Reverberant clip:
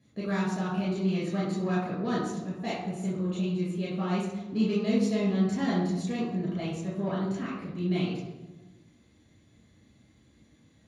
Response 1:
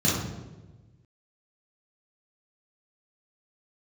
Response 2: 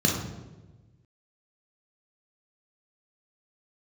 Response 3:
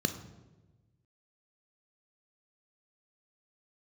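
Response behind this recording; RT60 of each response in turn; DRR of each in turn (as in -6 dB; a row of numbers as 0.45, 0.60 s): 1; 1.2, 1.2, 1.2 s; -8.0, -1.5, 8.0 dB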